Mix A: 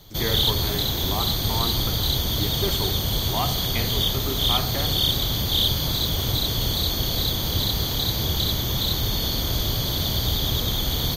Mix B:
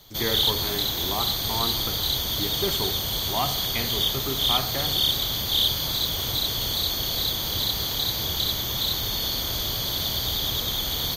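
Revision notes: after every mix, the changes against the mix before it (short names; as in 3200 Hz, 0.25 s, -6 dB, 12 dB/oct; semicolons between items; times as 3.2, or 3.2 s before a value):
background: add low shelf 440 Hz -9.5 dB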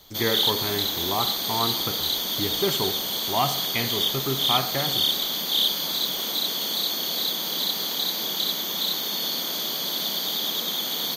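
speech +3.5 dB; background: add brick-wall FIR high-pass 160 Hz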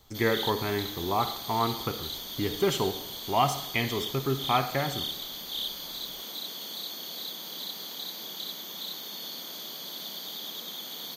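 background -11.5 dB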